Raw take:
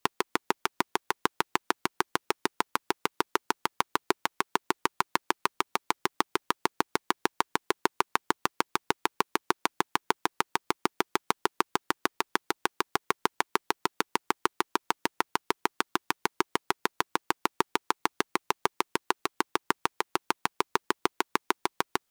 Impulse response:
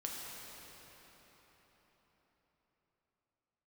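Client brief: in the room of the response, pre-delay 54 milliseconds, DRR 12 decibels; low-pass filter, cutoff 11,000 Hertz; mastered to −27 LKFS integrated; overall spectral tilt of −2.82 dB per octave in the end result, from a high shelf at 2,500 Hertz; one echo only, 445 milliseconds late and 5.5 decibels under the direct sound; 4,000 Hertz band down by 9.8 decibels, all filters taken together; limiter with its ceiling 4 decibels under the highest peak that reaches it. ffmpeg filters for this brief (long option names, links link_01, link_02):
-filter_complex "[0:a]lowpass=11000,highshelf=frequency=2500:gain=-7.5,equalizer=frequency=4000:width_type=o:gain=-6.5,alimiter=limit=-10.5dB:level=0:latency=1,aecho=1:1:445:0.531,asplit=2[link_01][link_02];[1:a]atrim=start_sample=2205,adelay=54[link_03];[link_02][link_03]afir=irnorm=-1:irlink=0,volume=-13dB[link_04];[link_01][link_04]amix=inputs=2:normalize=0,volume=7dB"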